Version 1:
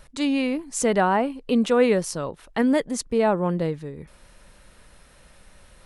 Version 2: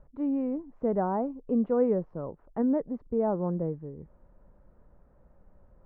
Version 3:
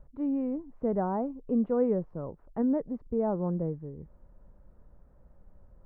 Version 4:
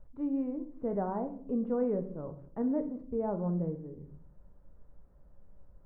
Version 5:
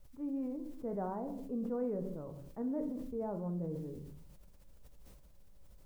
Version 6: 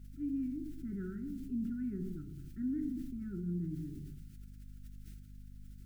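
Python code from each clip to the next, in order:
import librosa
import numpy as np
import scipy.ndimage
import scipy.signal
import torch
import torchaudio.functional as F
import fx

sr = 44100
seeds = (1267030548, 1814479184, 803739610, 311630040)

y1 = scipy.signal.sosfilt(scipy.signal.bessel(4, 720.0, 'lowpass', norm='mag', fs=sr, output='sos'), x)
y1 = y1 * 10.0 ** (-5.0 / 20.0)
y2 = fx.low_shelf(y1, sr, hz=160.0, db=6.0)
y2 = y2 * 10.0 ** (-2.5 / 20.0)
y3 = fx.room_shoebox(y2, sr, seeds[0], volume_m3=74.0, walls='mixed', distance_m=0.36)
y3 = y3 * 10.0 ** (-4.5 / 20.0)
y4 = fx.quant_dither(y3, sr, seeds[1], bits=12, dither='triangular')
y4 = fx.sustainer(y4, sr, db_per_s=28.0)
y4 = y4 * 10.0 ** (-6.5 / 20.0)
y5 = fx.add_hum(y4, sr, base_hz=50, snr_db=13)
y5 = fx.brickwall_bandstop(y5, sr, low_hz=390.0, high_hz=1300.0)
y5 = y5 * 10.0 ** (1.5 / 20.0)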